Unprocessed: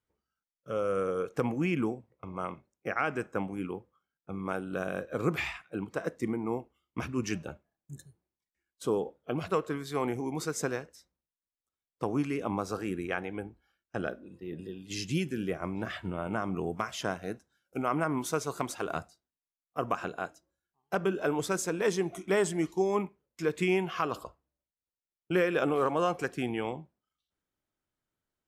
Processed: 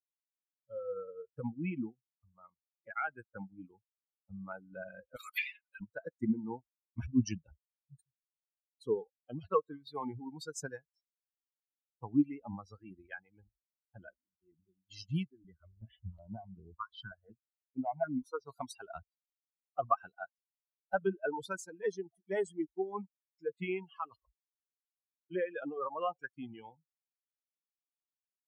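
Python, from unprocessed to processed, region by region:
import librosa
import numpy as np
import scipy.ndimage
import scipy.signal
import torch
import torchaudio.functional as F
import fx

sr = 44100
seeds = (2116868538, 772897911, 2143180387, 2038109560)

y = fx.chain(x, sr, fx.highpass(hz=1200.0, slope=12),
    fx.high_shelf(hz=6800.0, db=6.0),
    fx.band_squash(depth_pct=100), at=(5.16, 5.81))
y = fx.chain(y, sr, fx.high_shelf(hz=5800.0, db=-10.5),
    fx.echo_single(ms=221, db=-21.0),
    fx.phaser_held(hz=5.4, low_hz=670.0, high_hz=6400.0), at=(15.26, 18.47))
y = fx.bin_expand(y, sr, power=3.0)
y = fx.lowpass(y, sr, hz=2400.0, slope=6)
y = fx.rider(y, sr, range_db=10, speed_s=2.0)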